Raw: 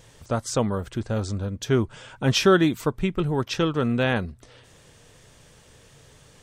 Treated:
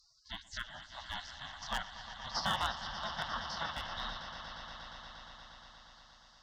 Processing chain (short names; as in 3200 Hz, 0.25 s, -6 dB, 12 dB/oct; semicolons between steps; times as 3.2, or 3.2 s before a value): stepped spectrum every 50 ms; tilt +2 dB/oct; mistuned SSB -96 Hz 300–3200 Hz; in parallel at +3 dB: compressor 10:1, threshold -36 dBFS, peak gain reduction 20 dB; on the sum: spectral gate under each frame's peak -30 dB weak; on a send: swelling echo 0.118 s, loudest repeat 5, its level -13.5 dB; on the sum: one-sided clip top -36.5 dBFS; fixed phaser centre 1000 Hz, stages 4; gain +15.5 dB